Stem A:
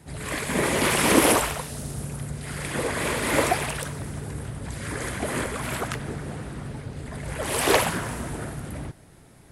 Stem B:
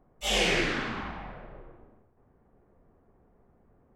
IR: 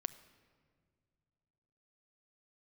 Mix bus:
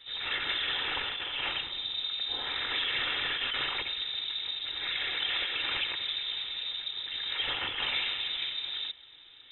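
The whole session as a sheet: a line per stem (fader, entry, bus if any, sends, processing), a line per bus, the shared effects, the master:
-0.5 dB, 0.00 s, no send, peaking EQ 250 Hz -3 dB 1.2 oct; compressor with a negative ratio -27 dBFS, ratio -1; peak limiter -19 dBFS, peak gain reduction 7 dB
-14.0 dB, 2.05 s, no send, none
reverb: none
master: high-pass 110 Hz; comb of notches 450 Hz; frequency inversion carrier 3.8 kHz

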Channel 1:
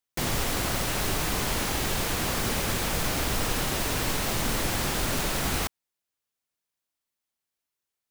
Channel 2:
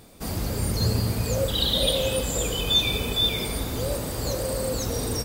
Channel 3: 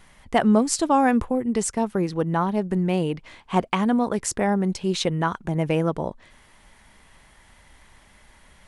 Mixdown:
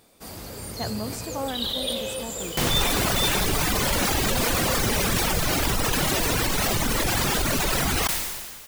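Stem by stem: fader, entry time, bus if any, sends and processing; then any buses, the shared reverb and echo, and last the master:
+3.0 dB, 2.40 s, no send, reverb removal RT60 1.9 s; level flattener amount 100%
-5.0 dB, 0.00 s, no send, bass shelf 240 Hz -10.5 dB
-14.5 dB, 0.45 s, no send, none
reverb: none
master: decay stretcher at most 36 dB/s

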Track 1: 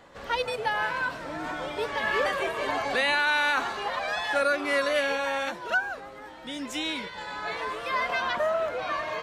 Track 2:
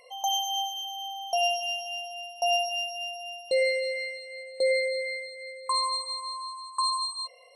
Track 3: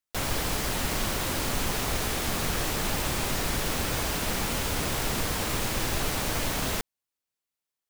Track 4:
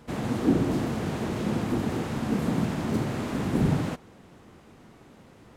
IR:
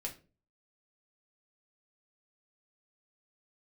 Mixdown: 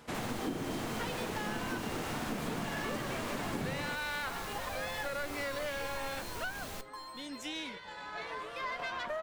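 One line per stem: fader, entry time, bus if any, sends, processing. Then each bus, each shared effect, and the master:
-6.0 dB, 0.70 s, no send, valve stage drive 21 dB, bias 0.55
-18.5 dB, 0.15 s, no send, slew-rate limiter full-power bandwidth 110 Hz
-17.0 dB, 0.00 s, send -7 dB, none
+2.0 dB, 0.00 s, no send, bass shelf 470 Hz -11.5 dB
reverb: on, RT60 0.35 s, pre-delay 4 ms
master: compression 6:1, threshold -33 dBFS, peak gain reduction 10.5 dB

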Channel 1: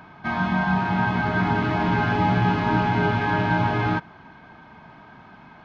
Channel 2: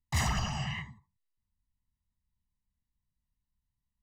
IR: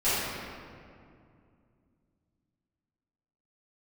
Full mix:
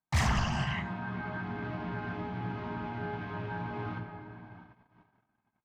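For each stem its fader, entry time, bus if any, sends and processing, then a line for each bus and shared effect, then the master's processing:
-11.5 dB, 0.00 s, send -15 dB, compression 4:1, threshold -27 dBFS, peak gain reduction 9.5 dB
+2.5 dB, 0.00 s, no send, none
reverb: on, RT60 2.4 s, pre-delay 4 ms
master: gate -50 dBFS, range -39 dB; treble shelf 5 kHz -7.5 dB; loudspeaker Doppler distortion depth 0.25 ms

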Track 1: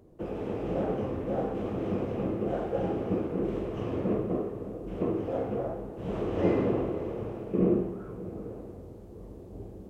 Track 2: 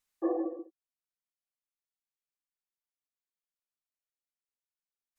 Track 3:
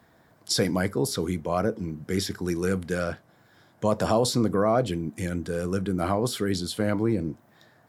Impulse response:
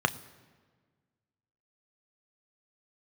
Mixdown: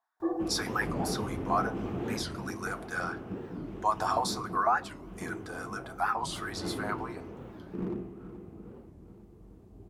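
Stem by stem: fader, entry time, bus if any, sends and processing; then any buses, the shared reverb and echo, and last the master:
2.01 s -0.5 dB -> 2.49 s -8 dB, 0.20 s, no send, echo send -12.5 dB, overload inside the chain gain 19 dB
+1.5 dB, 0.00 s, no send, no echo send, none
-4.5 dB, 0.00 s, send -15 dB, no echo send, comb of notches 200 Hz; LFO high-pass saw up 6 Hz 710–1500 Hz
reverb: on, RT60 1.5 s, pre-delay 3 ms
echo: feedback delay 425 ms, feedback 56%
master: gate with hold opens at -50 dBFS; peaking EQ 530 Hz -11.5 dB 0.5 oct; warped record 45 rpm, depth 250 cents

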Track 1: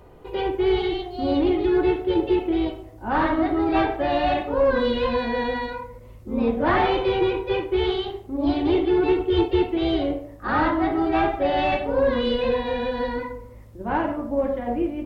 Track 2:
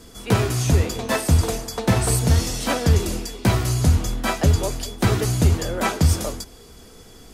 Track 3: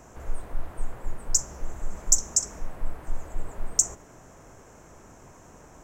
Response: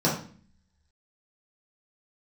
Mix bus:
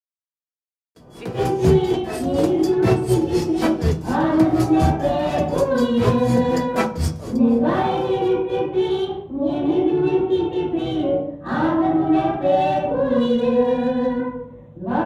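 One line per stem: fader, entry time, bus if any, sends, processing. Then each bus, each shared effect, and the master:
+0.5 dB, 1.00 s, bus A, send -14 dB, local Wiener filter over 9 samples; peaking EQ 3.3 kHz +13.5 dB 0.81 oct; peak limiter -15 dBFS, peak gain reduction 7.5 dB
+0.5 dB, 0.95 s, no bus, send -19.5 dB, gate with hold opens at -36 dBFS; logarithmic tremolo 4.1 Hz, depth 21 dB
mute
bus A: 0.0 dB, inverse Chebyshev band-stop 930–1900 Hz, stop band 60 dB; peak limiter -18.5 dBFS, peak gain reduction 4 dB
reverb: on, RT60 0.45 s, pre-delay 3 ms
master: high-pass 67 Hz; treble shelf 3.7 kHz -8 dB; vibrato 0.8 Hz 24 cents

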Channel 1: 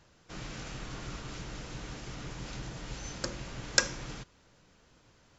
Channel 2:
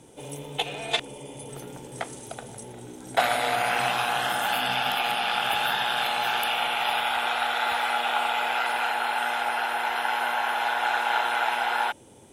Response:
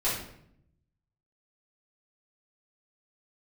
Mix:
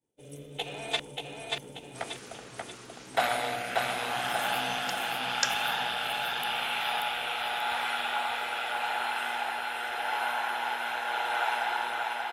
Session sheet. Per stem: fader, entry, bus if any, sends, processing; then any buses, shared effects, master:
-3.5 dB, 1.65 s, no send, no echo send, high-pass 710 Hz
-4.0 dB, 0.00 s, no send, echo send -3 dB, expander -36 dBFS; rotary cabinet horn 0.85 Hz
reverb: none
echo: feedback delay 584 ms, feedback 42%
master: none

